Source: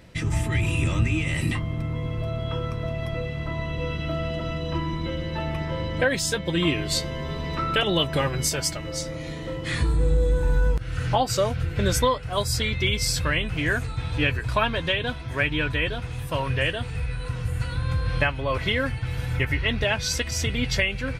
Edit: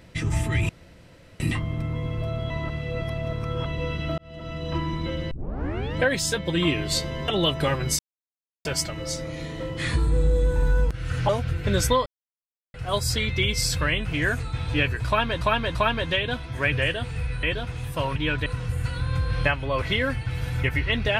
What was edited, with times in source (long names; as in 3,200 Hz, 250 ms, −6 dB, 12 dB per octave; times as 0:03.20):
0:00.69–0:01.40: fill with room tone
0:02.50–0:03.66: reverse
0:04.18–0:04.75: fade in
0:05.31: tape start 0.65 s
0:07.28–0:07.81: remove
0:08.52: splice in silence 0.66 s
0:11.16–0:11.41: remove
0:12.18: splice in silence 0.68 s
0:14.51–0:14.85: repeat, 3 plays
0:15.48–0:15.78: swap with 0:16.51–0:17.22